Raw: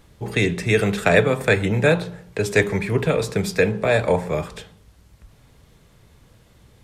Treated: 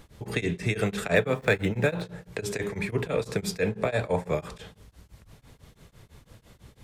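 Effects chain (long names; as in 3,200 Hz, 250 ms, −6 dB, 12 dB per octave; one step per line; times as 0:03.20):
0:01.15–0:02.02: running median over 5 samples
downward compressor 1.5 to 1, threshold −34 dBFS, peak gain reduction 8.5 dB
tremolo along a rectified sine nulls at 6 Hz
level +2.5 dB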